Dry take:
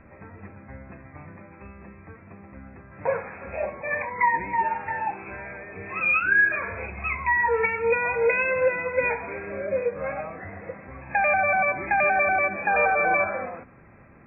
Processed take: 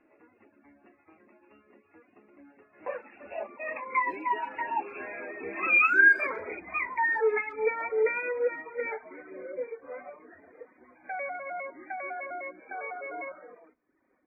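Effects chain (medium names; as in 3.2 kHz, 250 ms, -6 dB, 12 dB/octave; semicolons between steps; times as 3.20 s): Doppler pass-by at 5.68 s, 22 m/s, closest 21 m; resonant low shelf 200 Hz -14 dB, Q 3; speakerphone echo 130 ms, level -27 dB; flange 0.44 Hz, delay 6.4 ms, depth 2.5 ms, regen -49%; reverb removal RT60 0.75 s; trim +4.5 dB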